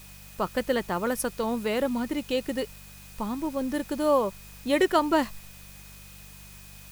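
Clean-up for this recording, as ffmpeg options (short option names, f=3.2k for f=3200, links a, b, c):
-af "bandreject=f=49:t=h:w=4,bandreject=f=98:t=h:w=4,bandreject=f=147:t=h:w=4,bandreject=f=196:t=h:w=4,bandreject=f=2.5k:w=30,afwtdn=0.0032"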